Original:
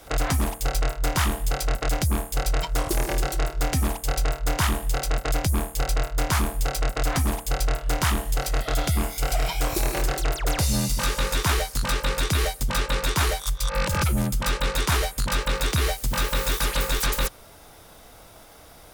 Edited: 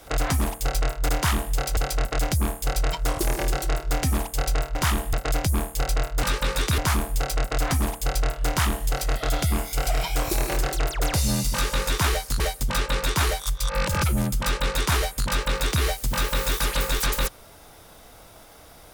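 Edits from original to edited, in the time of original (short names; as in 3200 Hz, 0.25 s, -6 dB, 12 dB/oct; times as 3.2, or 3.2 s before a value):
1.09–1.47 swap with 4.45–5.13
11.85–12.4 move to 6.23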